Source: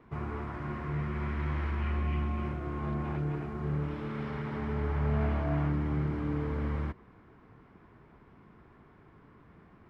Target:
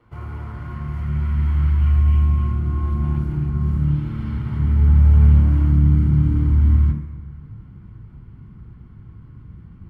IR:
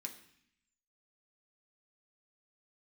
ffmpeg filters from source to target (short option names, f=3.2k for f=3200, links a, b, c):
-filter_complex "[0:a]acrusher=bits=9:mode=log:mix=0:aa=0.000001,asubboost=boost=9.5:cutoff=190[a];[1:a]atrim=start_sample=2205,asetrate=25137,aresample=44100[b];[a][b]afir=irnorm=-1:irlink=0"